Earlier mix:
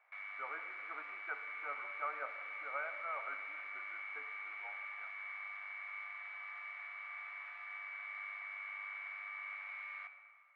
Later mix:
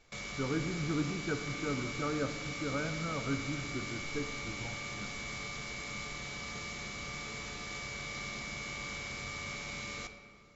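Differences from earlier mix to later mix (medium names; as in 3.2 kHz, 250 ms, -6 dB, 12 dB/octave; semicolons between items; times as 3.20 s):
background: remove high-pass 1.3 kHz 12 dB/octave; master: remove Chebyshev band-pass 660–2200 Hz, order 3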